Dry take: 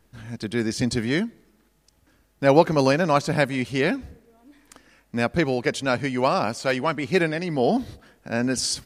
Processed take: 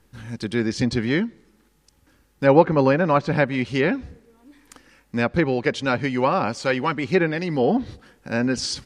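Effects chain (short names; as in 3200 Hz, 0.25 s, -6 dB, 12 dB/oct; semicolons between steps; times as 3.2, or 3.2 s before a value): Butterworth band-stop 660 Hz, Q 6.6; treble ducked by the level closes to 2200 Hz, closed at -16.5 dBFS; gain +2 dB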